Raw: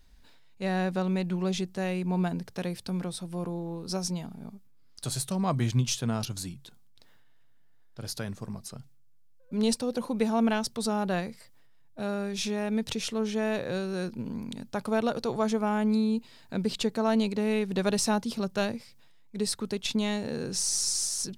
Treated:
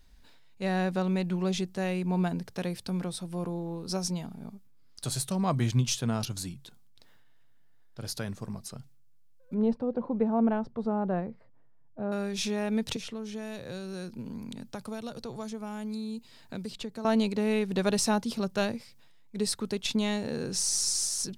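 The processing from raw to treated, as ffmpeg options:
-filter_complex "[0:a]asettb=1/sr,asplit=3[s0][s1][s2];[s0]atrim=end=9.544[s3];[s1]atrim=start=9.54:end=12.12,asetpts=PTS-STARTPTS,afade=t=in:d=0.004:c=qsin,afade=t=out:st=2.576:d=0.004:c=qsin,lowpass=1000[s4];[s2]atrim=start=12.116[s5];[s3][s4]acrossfade=d=0.004:c1=hsin:c2=qsin[s6];[s6][s5]acrossfade=d=0.004:c1=qsin:c2=hsin,asettb=1/sr,asplit=3[s7][s8][s9];[s7]atrim=end=12.964[s10];[s8]atrim=start=12.96:end=17.05,asetpts=PTS-STARTPTS,afade=t=in:d=0.004:c=qsin,afade=t=out:st=4.086:d=0.004:c=qsin,acrossover=split=170|3900[s11][s12][s13];[s11]acompressor=threshold=0.00631:ratio=4[s14];[s12]acompressor=threshold=0.0112:ratio=4[s15];[s13]acompressor=threshold=0.00355:ratio=4[s16];[s14][s15][s16]amix=inputs=3:normalize=0[s17];[s9]atrim=start=17.046[s18];[s10][s17]acrossfade=d=0.004:c1=hsin:c2=qsin[s19];[s19][s18]acrossfade=d=0.004:c1=qsin:c2=hsin"

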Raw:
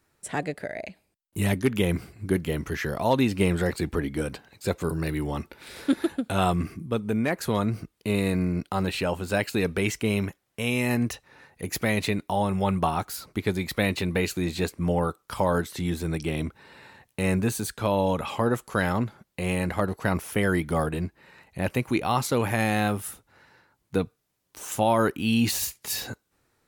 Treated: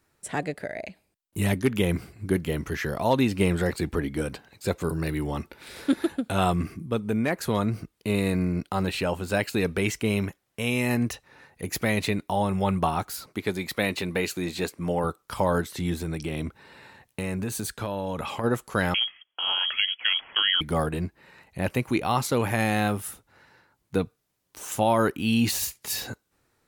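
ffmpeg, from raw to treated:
-filter_complex "[0:a]asettb=1/sr,asplit=3[s0][s1][s2];[s0]atrim=end=13.264[s3];[s1]atrim=start=13.26:end=15.04,asetpts=PTS-STARTPTS,afade=t=in:d=0.004:c=qsin,afade=t=out:st=1.776:d=0.004:c=qsin,highpass=f=210:p=1[s4];[s2]atrim=start=15.036[s5];[s3][s4]acrossfade=d=0.004:c1=hsin:c2=qsin[s6];[s6][s5]acrossfade=d=0.004:c1=qsin:c2=hsin,asplit=3[s7][s8][s9];[s7]afade=t=out:st=16:d=0.02[s10];[s8]acompressor=threshold=0.0562:ratio=6:attack=3.2:release=140:knee=1:detection=peak,afade=t=in:st=16:d=0.02,afade=t=out:st=18.43:d=0.02[s11];[s9]afade=t=in:st=18.43:d=0.02[s12];[s10][s11][s12]amix=inputs=3:normalize=0,asettb=1/sr,asplit=3[s13][s14][s15];[s13]atrim=end=18.944[s16];[s14]atrim=start=18.94:end=20.61,asetpts=PTS-STARTPTS,afade=t=in:d=0.004:c=qsin,afade=t=out:st=1.666:d=0.004:c=qsin,lowpass=f=2900:t=q:w=0.5098,lowpass=f=2900:t=q:w=0.6013,lowpass=f=2900:t=q:w=0.9,lowpass=f=2900:t=q:w=2.563,afreqshift=-3400[s17];[s15]atrim=start=20.606[s18];[s16][s17]acrossfade=d=0.004:c1=hsin:c2=qsin[s19];[s19][s18]acrossfade=d=0.004:c1=qsin:c2=hsin"

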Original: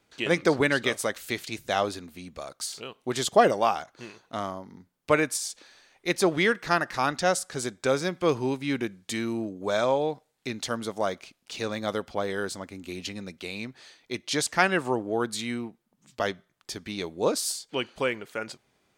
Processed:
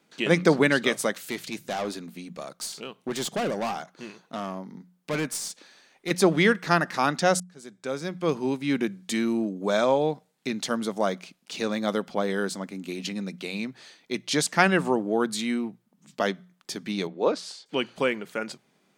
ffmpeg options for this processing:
-filter_complex "[0:a]asettb=1/sr,asplit=3[s0][s1][s2];[s0]atrim=end=1.284[s3];[s1]atrim=start=1.28:end=6.11,asetpts=PTS-STARTPTS,afade=t=in:d=0.004:c=qsin,afade=t=out:st=4.826:d=0.004:c=qsin,aeval=exprs='(tanh(22.4*val(0)+0.35)-tanh(0.35))/22.4':c=same[s4];[s2]atrim=start=6.106[s5];[s3][s4]acrossfade=d=0.004:c1=hsin:c2=qsin[s6];[s6][s5]acrossfade=d=0.004:c1=qsin:c2=hsin,asettb=1/sr,asplit=3[s7][s8][s9];[s7]atrim=end=17.074[s10];[s8]atrim=start=17.07:end=17.66,asetpts=PTS-STARTPTS,afade=t=in:d=0.004:c=qsin,afade=t=out:st=0.586:d=0.004:c=qsin,highpass=330,lowpass=3300[s11];[s9]atrim=start=17.656[s12];[s10][s11]acrossfade=d=0.004:c1=hsin:c2=qsin[s13];[s13][s12]acrossfade=d=0.004:c1=qsin:c2=hsin,asplit=2[s14][s15];[s14]atrim=end=7.4,asetpts=PTS-STARTPTS,afade=t=out:st=7.396:d=0.004:c=hsin[s16];[s15]atrim=start=7.4,asetpts=PTS-STARTPTS,afade=t=in:d=1.46[s17];[s16][s17]concat=n=2:v=0:a=1,lowshelf=f=120:t=q:w=3:g=-12,bandreject=f=60:t=h:w=6,bandreject=f=120:t=h:w=6,bandreject=f=180:t=h:w=6,volume=1.19"

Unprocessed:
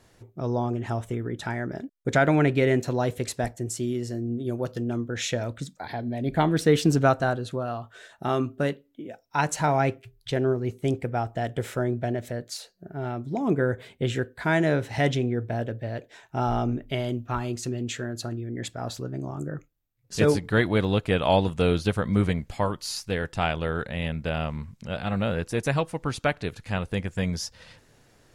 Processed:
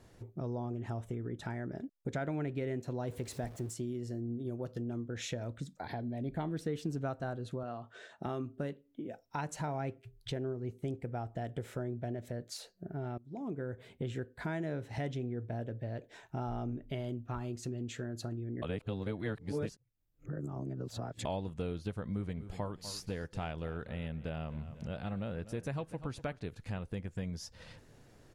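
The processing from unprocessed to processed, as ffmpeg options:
-filter_complex "[0:a]asettb=1/sr,asplit=3[s0][s1][s2];[s0]atrim=end=3.074[s3];[s1]atrim=start=3.07:end=3.74,asetpts=PTS-STARTPTS,afade=t=in:d=0.004:c=qsin,afade=t=out:st=0.666:d=0.004:c=qsin,aeval=exprs='val(0)+0.5*0.0133*sgn(val(0))':c=same[s4];[s2]atrim=start=3.736[s5];[s3][s4]acrossfade=d=0.004:c1=hsin:c2=qsin[s6];[s6][s5]acrossfade=d=0.004:c1=qsin:c2=hsin,asettb=1/sr,asplit=3[s7][s8][s9];[s7]atrim=end=7.634[s10];[s8]atrim=start=7.63:end=8.26,asetpts=PTS-STARTPTS,afade=t=in:d=0.004:c=qsin,afade=t=out:st=0.626:d=0.004:c=qsin,highpass=150,lowpass=6800[s11];[s9]atrim=start=8.256[s12];[s10][s11]acrossfade=d=0.004:c1=hsin:c2=qsin[s13];[s13][s12]acrossfade=d=0.004:c1=qsin:c2=hsin,asplit=3[s14][s15][s16];[s14]afade=t=out:st=22.35:d=0.02[s17];[s15]aecho=1:1:246|492|738:0.126|0.0415|0.0137,afade=t=in:st=22.35:d=0.02,afade=t=out:st=26.38:d=0.02[s18];[s16]afade=t=in:st=26.38:d=0.02[s19];[s17][s18][s19]amix=inputs=3:normalize=0,asplit=4[s20][s21][s22][s23];[s20]atrim=end=13.18,asetpts=PTS-STARTPTS,afade=t=out:st=13.176:d=0.004:c=hsin:silence=0.0668344[s24];[s21]atrim=start=13.18:end=18.622,asetpts=PTS-STARTPTS,afade=t=in:d=0.94:silence=0.0668344[s25];[s22]atrim=start=18.618:end=21.252,asetpts=PTS-STARTPTS,areverse[s26];[s23]atrim=start=21.248[s27];[s24][s25]concat=n=2:v=0:a=1[s28];[s28][s26]acrossfade=d=0.004:c1=hsin:c2=hsin[s29];[s29][s27]acrossfade=d=0.004:c1=hsin:c2=hsin,tiltshelf=f=720:g=3.5,acompressor=threshold=0.0158:ratio=3,volume=0.75"

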